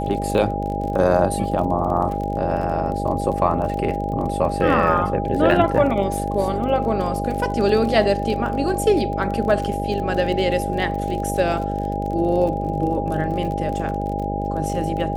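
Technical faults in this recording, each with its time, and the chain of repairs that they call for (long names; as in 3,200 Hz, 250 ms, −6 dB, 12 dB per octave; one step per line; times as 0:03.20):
mains buzz 50 Hz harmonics 13 −26 dBFS
surface crackle 35 per second −28 dBFS
whistle 810 Hz −26 dBFS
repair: click removal
hum removal 50 Hz, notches 13
notch filter 810 Hz, Q 30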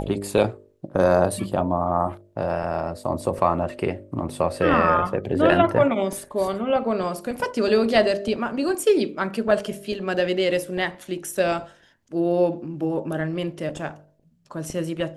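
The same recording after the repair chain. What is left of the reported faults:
none of them is left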